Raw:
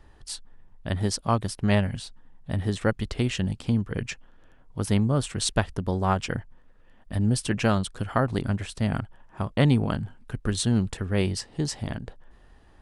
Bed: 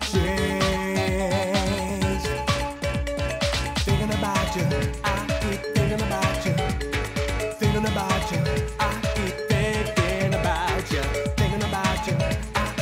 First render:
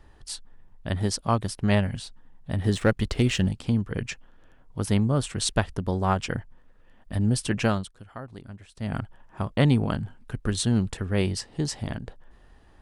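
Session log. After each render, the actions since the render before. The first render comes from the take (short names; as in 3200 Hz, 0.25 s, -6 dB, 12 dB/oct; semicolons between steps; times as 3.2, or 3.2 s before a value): 2.64–3.49 sample leveller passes 1; 7.65–9.02 dip -15.5 dB, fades 0.29 s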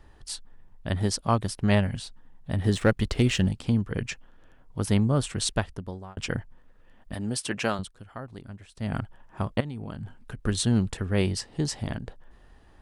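5.35–6.17 fade out; 7.14–7.79 HPF 400 Hz 6 dB/oct; 9.6–10.39 compressor 12:1, threshold -31 dBFS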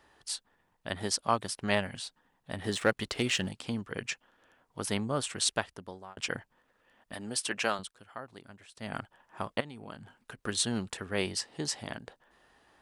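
HPF 640 Hz 6 dB/oct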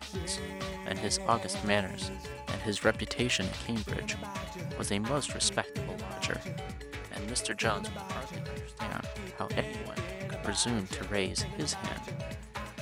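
add bed -15.5 dB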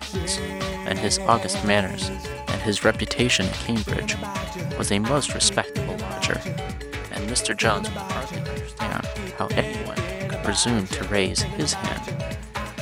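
gain +9.5 dB; limiter -3 dBFS, peak gain reduction 2.5 dB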